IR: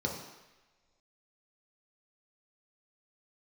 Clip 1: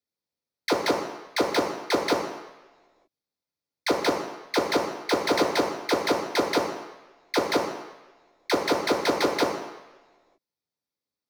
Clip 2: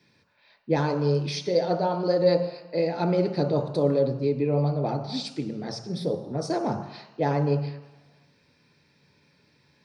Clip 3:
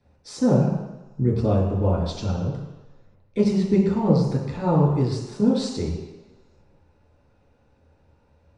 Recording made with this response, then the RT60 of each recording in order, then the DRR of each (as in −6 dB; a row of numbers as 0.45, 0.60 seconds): 1; non-exponential decay, non-exponential decay, non-exponential decay; −1.0, 4.5, −5.5 decibels